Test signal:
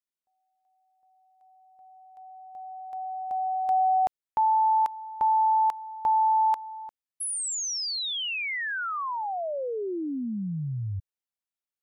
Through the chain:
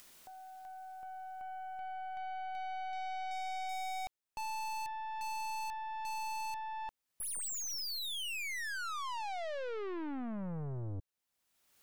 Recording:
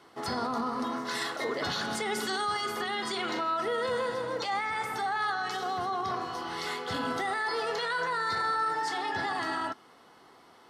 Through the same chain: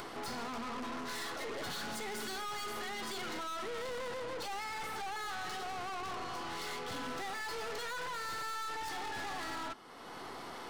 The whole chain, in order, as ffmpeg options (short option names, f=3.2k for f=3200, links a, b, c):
-af "acompressor=mode=upward:threshold=-30dB:ratio=2.5:attack=4:release=621:knee=2.83:detection=peak,aeval=exprs='(tanh(112*val(0)+0.5)-tanh(0.5))/112':c=same,volume=2dB"